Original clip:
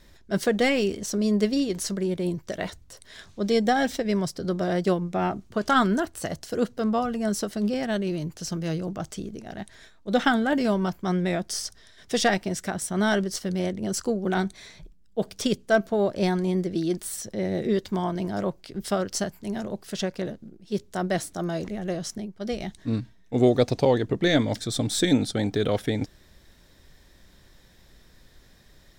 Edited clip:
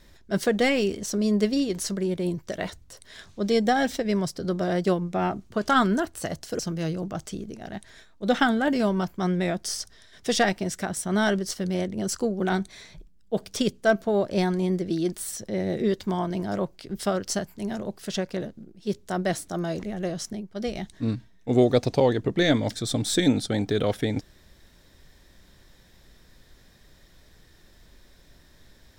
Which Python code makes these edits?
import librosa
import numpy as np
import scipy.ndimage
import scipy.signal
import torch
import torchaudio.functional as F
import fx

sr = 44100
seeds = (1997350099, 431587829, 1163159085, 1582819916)

y = fx.edit(x, sr, fx.cut(start_s=6.59, length_s=1.85), tone=tone)